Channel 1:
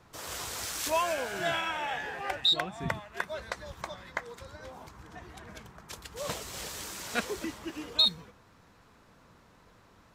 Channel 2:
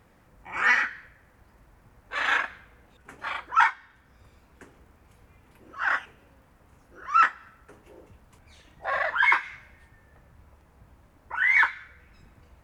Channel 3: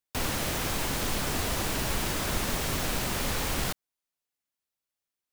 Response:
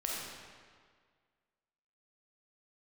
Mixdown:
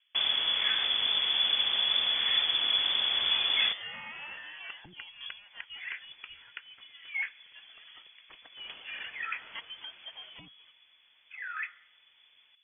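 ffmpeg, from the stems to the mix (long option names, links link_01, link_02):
-filter_complex "[0:a]acompressor=threshold=-34dB:ratio=2.5,adelay=2400,volume=-6dB[link_01];[1:a]lowpass=1600,volume=-12.5dB[link_02];[2:a]equalizer=frequency=100:width=0.6:gain=12.5,volume=-3.5dB[link_03];[link_01][link_02][link_03]amix=inputs=3:normalize=0,lowpass=frequency=3000:width_type=q:width=0.5098,lowpass=frequency=3000:width_type=q:width=0.6013,lowpass=frequency=3000:width_type=q:width=0.9,lowpass=frequency=3000:width_type=q:width=2.563,afreqshift=-3500"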